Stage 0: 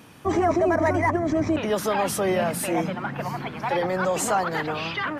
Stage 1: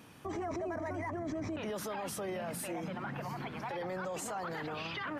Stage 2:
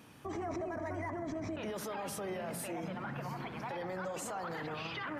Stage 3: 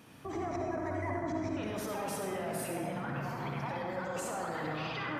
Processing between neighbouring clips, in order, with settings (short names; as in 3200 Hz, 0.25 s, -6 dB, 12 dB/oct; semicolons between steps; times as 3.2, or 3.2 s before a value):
limiter -24 dBFS, peak gain reduction 11.5 dB; gain -7 dB
analogue delay 64 ms, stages 1024, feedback 72%, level -12 dB; gain -1.5 dB
reverb RT60 1.9 s, pre-delay 47 ms, DRR 0 dB